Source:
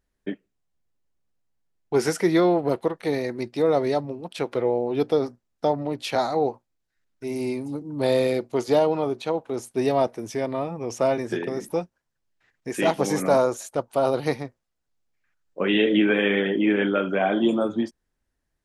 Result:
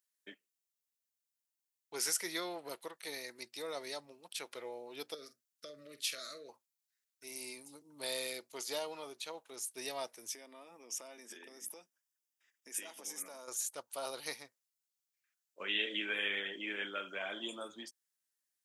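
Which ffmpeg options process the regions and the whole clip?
ffmpeg -i in.wav -filter_complex "[0:a]asettb=1/sr,asplit=3[link_01][link_02][link_03];[link_01]atrim=end=5.144[link_04];[link_02]atrim=start=5.14:end=6.49,asetpts=PTS-STARTPTS,afade=type=in:duration=0.004:curve=qsin,afade=type=out:start_time=1.346:duration=0.004:curve=qsin,acompressor=threshold=-24dB:ratio=5:attack=3.2:release=140:knee=1:detection=peak,asuperstop=centerf=850:order=12:qfactor=1.9,asplit=2[link_05][link_06];[link_06]adelay=47,volume=-12.5dB[link_07];[link_05][link_07]amix=inputs=2:normalize=0,atrim=end_sample=59535[link_08];[link_03]atrim=start=6.486[link_09];[link_04][link_08]acrossfade=duration=0.004:curve1=hsin:curve2=qsin[link_10];[link_10][link_09]acrossfade=duration=0.004:curve1=qsin:curve2=hsin,asettb=1/sr,asplit=3[link_11][link_12][link_13];[link_11]atrim=end=10.344[link_14];[link_12]atrim=start=10.34:end=13.48,asetpts=PTS-STARTPTS,afade=type=in:duration=0.004:curve=qsin,afade=type=out:start_time=3.136:duration=0.004:curve=qsin,lowshelf=frequency=170:width_type=q:width=3:gain=-10,acompressor=threshold=-30dB:ratio=4:attack=3.2:release=140:knee=1:detection=peak,asuperstop=centerf=4200:order=4:qfactor=6.1[link_15];[link_13]atrim=start=13.476[link_16];[link_14][link_15]acrossfade=duration=0.004:curve1=hsin:curve2=qsin[link_17];[link_17][link_16]acrossfade=duration=0.004:curve1=qsin:curve2=hsin,aderivative,bandreject=frequency=750:width=12,volume=1dB" out.wav

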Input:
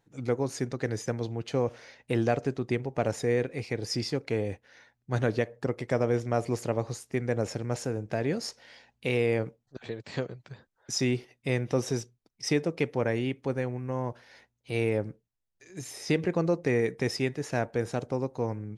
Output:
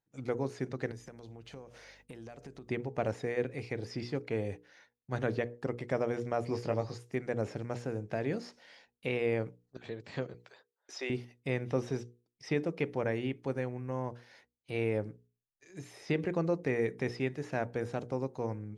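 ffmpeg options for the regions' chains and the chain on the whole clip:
ffmpeg -i in.wav -filter_complex "[0:a]asettb=1/sr,asplit=3[link_01][link_02][link_03];[link_01]atrim=end=0.914[link_04];[link_02]atrim=start=0.91:end=2.68,asetpts=PTS-STARTPTS,afade=type=in:duration=0.004:curve=qsin,afade=type=out:start_time=1.766:duration=0.004:curve=qsin,highshelf=frequency=6700:gain=10.5,acompressor=threshold=-39dB:ratio=8:attack=3.2:release=140:knee=1:detection=peak,aeval=exprs='val(0)+0.000794*(sin(2*PI*50*n/s)+sin(2*PI*2*50*n/s)/2+sin(2*PI*3*50*n/s)/3+sin(2*PI*4*50*n/s)/4+sin(2*PI*5*50*n/s)/5)':channel_layout=same[link_05];[link_03]atrim=start=2.676[link_06];[link_04][link_05]acrossfade=duration=0.004:curve1=hsin:curve2=qsin[link_07];[link_07][link_06]acrossfade=duration=0.004:curve1=qsin:curve2=hsin,asettb=1/sr,asplit=3[link_08][link_09][link_10];[link_08]atrim=end=6.474[link_11];[link_09]atrim=start=6.47:end=6.98,asetpts=PTS-STARTPTS,afade=type=in:duration=0.004:curve=qsin,afade=type=out:start_time=0.506:duration=0.004:curve=qsin,equalizer=frequency=5000:width_type=o:width=0.3:gain=13,asplit=2[link_12][link_13];[link_13]adelay=19,volume=-5.5dB[link_14];[link_12][link_14]amix=inputs=2:normalize=0,atrim=end_sample=22491[link_15];[link_10]atrim=start=6.976[link_16];[link_11][link_15]acrossfade=duration=0.004:curve1=hsin:curve2=qsin[link_17];[link_17][link_16]acrossfade=duration=0.004:curve1=qsin:curve2=hsin,asettb=1/sr,asplit=3[link_18][link_19][link_20];[link_18]atrim=end=10.344[link_21];[link_19]atrim=start=10.34:end=11.1,asetpts=PTS-STARTPTS,afade=type=in:duration=0.004:curve=qsin,afade=type=out:start_time=0.756:duration=0.004:curve=qsin,highpass=frequency=400:width=0.5412,highpass=frequency=400:width=1.3066,highshelf=frequency=2400:gain=3[link_22];[link_20]atrim=start=11.096[link_23];[link_21][link_22]acrossfade=duration=0.004:curve1=hsin:curve2=qsin[link_24];[link_24][link_23]acrossfade=duration=0.004:curve1=qsin:curve2=hsin,agate=range=-13dB:threshold=-56dB:ratio=16:detection=peak,acrossover=split=3700[link_25][link_26];[link_26]acompressor=threshold=-55dB:ratio=4:attack=1:release=60[link_27];[link_25][link_27]amix=inputs=2:normalize=0,bandreject=frequency=60:width_type=h:width=6,bandreject=frequency=120:width_type=h:width=6,bandreject=frequency=180:width_type=h:width=6,bandreject=frequency=240:width_type=h:width=6,bandreject=frequency=300:width_type=h:width=6,bandreject=frequency=360:width_type=h:width=6,bandreject=frequency=420:width_type=h:width=6,bandreject=frequency=480:width_type=h:width=6,volume=-4dB" out.wav

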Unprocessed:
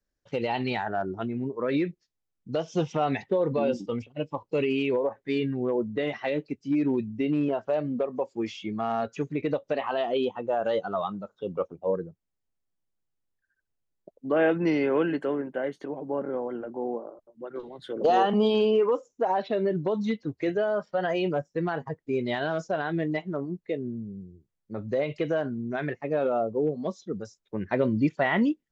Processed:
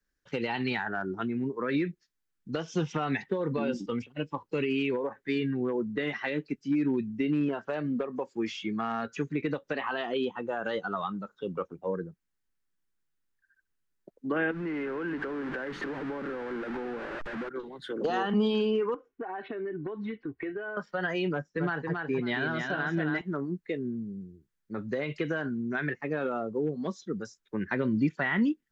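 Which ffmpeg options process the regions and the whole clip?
ffmpeg -i in.wav -filter_complex "[0:a]asettb=1/sr,asplit=3[link_01][link_02][link_03];[link_01]atrim=end=14.514[link_04];[link_02]atrim=start=14.51:end=17.49,asetpts=PTS-STARTPTS,afade=type=in:duration=0.004:curve=qsin,afade=type=out:start_time=2.976:duration=0.004:curve=qsin,aeval=exprs='val(0)+0.5*0.0316*sgn(val(0))':channel_layout=same,lowpass=2200,acompressor=threshold=-33dB:ratio=3:attack=3.2:release=140:knee=1:detection=peak[link_05];[link_03]atrim=start=17.486[link_06];[link_04][link_05]acrossfade=duration=0.004:curve1=hsin:curve2=qsin[link_07];[link_07][link_06]acrossfade=duration=0.004:curve1=qsin:curve2=hsin,asettb=1/sr,asplit=3[link_08][link_09][link_10];[link_08]atrim=end=18.944[link_11];[link_09]atrim=start=18.94:end=20.77,asetpts=PTS-STARTPTS,afade=type=in:duration=0.004:curve=qsin,afade=type=out:start_time=1.826:duration=0.004:curve=qsin,lowpass=frequency=2600:width=0.5412,lowpass=frequency=2600:width=1.3066,aecho=1:1:2.7:0.52,atrim=end_sample=80703,acompressor=threshold=-32dB:ratio=6:attack=3.2:release=140:knee=1:detection=peak[link_12];[link_10]atrim=start=20.766[link_13];[link_11][link_12]acrossfade=duration=0.004:curve1=hsin:curve2=qsin[link_14];[link_14][link_13]acrossfade=duration=0.004:curve1=qsin:curve2=hsin,asettb=1/sr,asplit=3[link_15][link_16][link_17];[link_15]atrim=end=21.294[link_18];[link_16]atrim=start=21.29:end=23.21,asetpts=PTS-STARTPTS,afade=type=in:duration=0.004:curve=qsin,afade=type=out:start_time=1.916:duration=0.004:curve=qsin,lowpass=5800,aecho=1:1:274|548|822:0.531|0.117|0.0257,atrim=end_sample=84672[link_19];[link_17]atrim=start=23.206[link_20];[link_18][link_19]acrossfade=duration=0.004:curve1=hsin:curve2=qsin[link_21];[link_21][link_20]acrossfade=duration=0.004:curve1=qsin:curve2=hsin,equalizer=frequency=100:width_type=o:width=0.67:gain=-8,equalizer=frequency=630:width_type=o:width=0.67:gain=-9,equalizer=frequency=1600:width_type=o:width=0.67:gain=7,acrossover=split=230[link_22][link_23];[link_23]acompressor=threshold=-31dB:ratio=2.5[link_24];[link_22][link_24]amix=inputs=2:normalize=0,volume=1.5dB" out.wav

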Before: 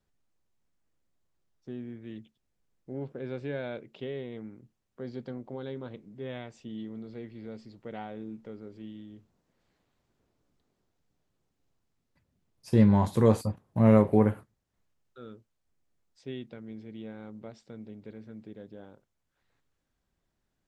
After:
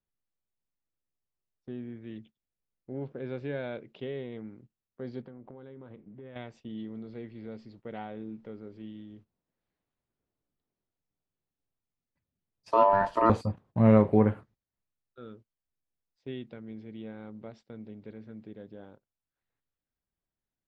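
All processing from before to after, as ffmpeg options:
ffmpeg -i in.wav -filter_complex "[0:a]asettb=1/sr,asplit=3[link_01][link_02][link_03];[link_01]atrim=end=5.224[link_04];[link_02]atrim=start=5.22:end=6.36,asetpts=PTS-STARTPTS,afade=type=in:duration=0.004:curve=qsin,afade=type=out:start_time=1.136:duration=0.004:curve=qsin,lowpass=2400,acompressor=threshold=-42dB:ratio=12:attack=3.2:release=140:knee=1:detection=peak[link_05];[link_03]atrim=start=6.356[link_06];[link_04][link_05]acrossfade=duration=0.004:curve1=hsin:curve2=qsin[link_07];[link_07][link_06]acrossfade=duration=0.004:curve1=qsin:curve2=hsin,asettb=1/sr,asplit=3[link_08][link_09][link_10];[link_08]atrim=end=12.714[link_11];[link_09]atrim=start=12.71:end=13.3,asetpts=PTS-STARTPTS,afade=type=in:duration=0.004:curve=qsin,afade=type=out:start_time=0.586:duration=0.004:curve=qsin,lowshelf=frequency=68:gain=8,aeval=exprs='val(0)*sin(2*PI*790*n/s)':channel_layout=same[link_12];[link_10]atrim=start=13.296[link_13];[link_11][link_12]acrossfade=duration=0.004:curve1=hsin:curve2=qsin[link_14];[link_14][link_13]acrossfade=duration=0.004:curve1=qsin:curve2=hsin,agate=range=-13dB:threshold=-53dB:ratio=16:detection=peak,lowpass=4400" out.wav

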